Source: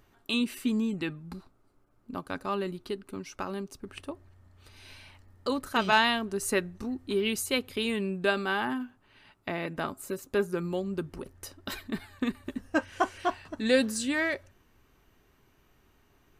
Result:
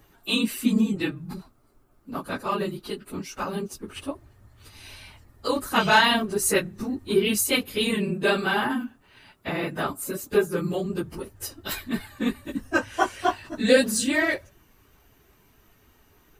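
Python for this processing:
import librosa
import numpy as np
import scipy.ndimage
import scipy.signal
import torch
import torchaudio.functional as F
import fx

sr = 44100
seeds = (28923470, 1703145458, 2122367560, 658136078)

y = fx.phase_scramble(x, sr, seeds[0], window_ms=50)
y = fx.high_shelf(y, sr, hz=8900.0, db=9.5)
y = F.gain(torch.from_numpy(y), 5.0).numpy()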